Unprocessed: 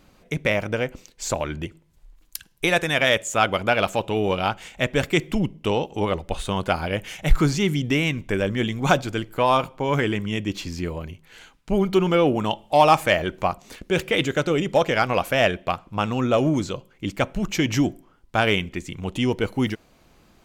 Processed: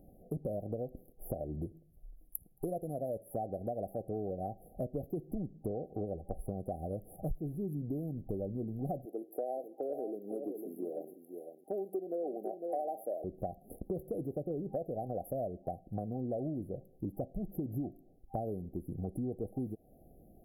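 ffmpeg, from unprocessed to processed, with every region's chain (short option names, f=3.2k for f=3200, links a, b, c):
-filter_complex "[0:a]asettb=1/sr,asplit=3[a][b][c];[a]atrim=end=9.054[d];[b]atrim=start=9.05:end=13.24,asetpts=PTS-STARTPTS,afade=t=in:d=0.004:c=qsin,afade=t=out:st=4.186:d=0.004:c=qsin,highpass=f=330:w=0.5412,highpass=f=330:w=1.3066,aecho=1:1:503:0.282,atrim=end_sample=184779[e];[c]atrim=start=13.236[f];[d][e]acrossfade=d=0.004:c1=hsin:c2=qsin[g];[g][f]acrossfade=d=0.004:c1=qsin:c2=hsin,afftfilt=real='re*(1-between(b*sr/4096,790,10000))':imag='im*(1-between(b*sr/4096,790,10000))':win_size=4096:overlap=0.75,acompressor=threshold=-33dB:ratio=6,volume=-2dB"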